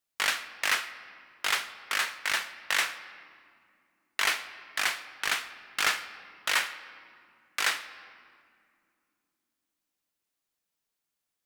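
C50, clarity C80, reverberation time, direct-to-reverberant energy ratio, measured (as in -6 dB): 13.0 dB, 14.0 dB, 2.5 s, 11.5 dB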